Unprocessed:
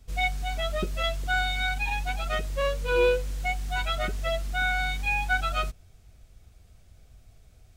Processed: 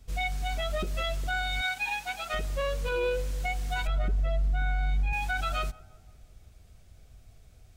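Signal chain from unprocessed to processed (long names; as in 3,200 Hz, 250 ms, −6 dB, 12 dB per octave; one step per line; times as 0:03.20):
0:01.61–0:02.34: high-pass filter 660 Hz 6 dB per octave
0:03.87–0:05.13: spectral tilt −3 dB per octave
brickwall limiter −21.5 dBFS, peak gain reduction 10 dB
tape delay 174 ms, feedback 70%, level −18.5 dB, low-pass 1,000 Hz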